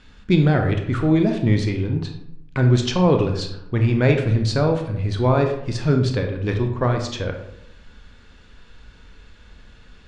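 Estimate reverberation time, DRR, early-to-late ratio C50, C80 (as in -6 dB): 0.80 s, 4.0 dB, 7.0 dB, 10.0 dB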